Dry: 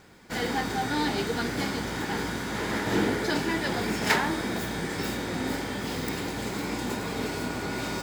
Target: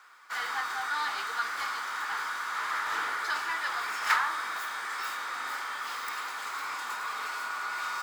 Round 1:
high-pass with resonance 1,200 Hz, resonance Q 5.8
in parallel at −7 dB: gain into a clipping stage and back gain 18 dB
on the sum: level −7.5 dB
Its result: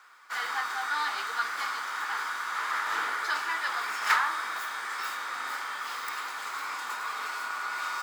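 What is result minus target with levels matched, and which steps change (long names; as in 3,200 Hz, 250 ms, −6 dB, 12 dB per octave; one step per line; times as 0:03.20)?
gain into a clipping stage and back: distortion −8 dB
change: gain into a clipping stage and back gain 28.5 dB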